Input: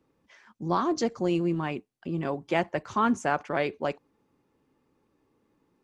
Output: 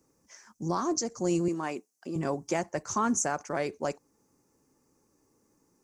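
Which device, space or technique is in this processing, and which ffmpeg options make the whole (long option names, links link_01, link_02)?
over-bright horn tweeter: -filter_complex "[0:a]asettb=1/sr,asplit=3[link_01][link_02][link_03];[link_01]atrim=end=1.484[link_04];[link_02]atrim=start=1.48:end=2.16,asetpts=PTS-STARTPTS,afade=type=in:duration=0.004:curve=qsin,afade=type=out:start_time=0.676:duration=0.004:curve=qsin,highpass=290[link_05];[link_03]atrim=start=2.156[link_06];[link_04][link_05]acrossfade=duration=0.004:curve1=hsin:curve2=qsin[link_07];[link_07][link_06]acrossfade=duration=0.004:curve1=qsin:curve2=hsin,highshelf=frequency=4600:width_type=q:width=3:gain=11,alimiter=limit=-17.5dB:level=0:latency=1:release=379"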